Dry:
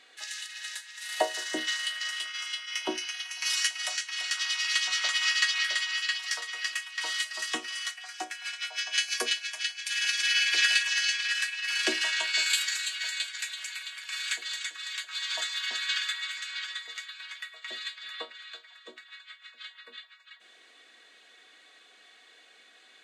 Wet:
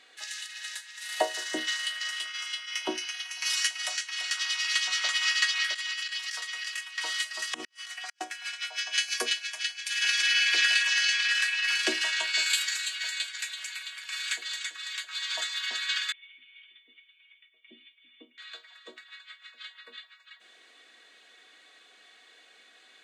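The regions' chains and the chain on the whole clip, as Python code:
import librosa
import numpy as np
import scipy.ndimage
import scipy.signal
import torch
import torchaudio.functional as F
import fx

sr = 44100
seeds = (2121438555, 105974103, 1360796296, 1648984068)

y = fx.chain(x, sr, fx.highpass(hz=1300.0, slope=6),
    fx.over_compress(threshold_db=-33.0, ratio=-0.5), at=(5.73, 6.81))
y = fx.chain(y, sr, fx.low_shelf(hz=440.0, db=8.5),
    fx.over_compress(threshold_db=-40.0, ratio=-1.0),
    fx.gate_flip(shuts_db=-26.0, range_db=-40), at=(7.54, 8.21))
y = fx.chain(y, sr, fx.high_shelf(hz=5500.0, db=-5.0),
    fx.env_flatten(amount_pct=50), at=(10.02, 11.76))
y = fx.chain(y, sr, fx.formant_cascade(vowel='i'),
    fx.low_shelf(hz=460.0, db=9.0), at=(16.12, 18.38))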